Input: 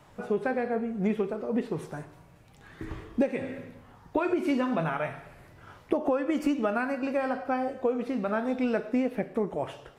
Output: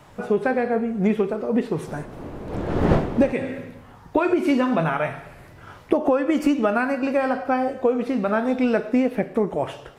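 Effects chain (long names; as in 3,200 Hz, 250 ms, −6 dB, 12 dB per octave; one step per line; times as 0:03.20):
0:01.87–0:03.32: wind on the microphone 420 Hz −28 dBFS
level +7 dB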